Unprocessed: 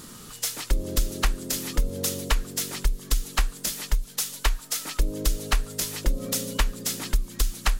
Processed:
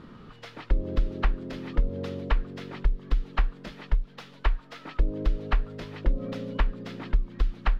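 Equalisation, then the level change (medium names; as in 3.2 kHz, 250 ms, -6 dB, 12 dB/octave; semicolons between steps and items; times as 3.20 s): low-pass 2.9 kHz 6 dB/octave; distance through air 350 m; 0.0 dB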